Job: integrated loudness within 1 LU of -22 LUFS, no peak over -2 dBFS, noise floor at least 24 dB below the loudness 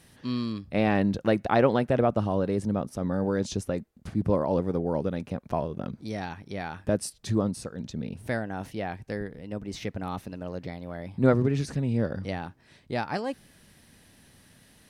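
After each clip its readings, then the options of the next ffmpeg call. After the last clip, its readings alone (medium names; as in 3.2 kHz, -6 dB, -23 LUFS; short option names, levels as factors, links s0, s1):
loudness -29.0 LUFS; peak level -7.5 dBFS; loudness target -22.0 LUFS
-> -af "volume=2.24,alimiter=limit=0.794:level=0:latency=1"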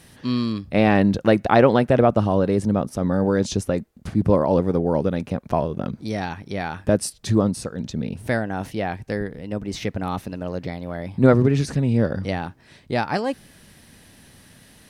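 loudness -22.0 LUFS; peak level -2.0 dBFS; noise floor -51 dBFS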